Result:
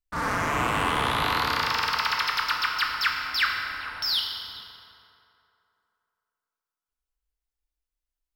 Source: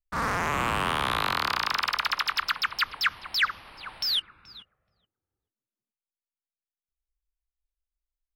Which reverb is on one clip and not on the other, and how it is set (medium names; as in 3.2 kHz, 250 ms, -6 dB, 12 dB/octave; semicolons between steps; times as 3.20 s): FDN reverb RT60 2.9 s, low-frequency decay 0.75×, high-frequency decay 0.55×, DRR -0.5 dB; trim -1 dB